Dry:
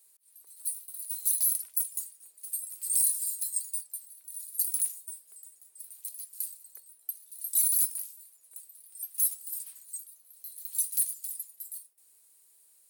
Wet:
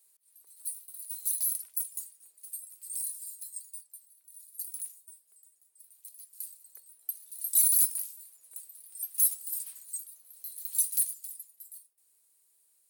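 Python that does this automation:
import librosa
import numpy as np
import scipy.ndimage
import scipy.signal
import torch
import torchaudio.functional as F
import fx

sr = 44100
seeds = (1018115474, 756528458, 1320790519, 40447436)

y = fx.gain(x, sr, db=fx.line((2.35, -3.5), (2.85, -10.0), (5.95, -10.0), (7.23, 2.0), (10.88, 2.0), (11.39, -6.5)))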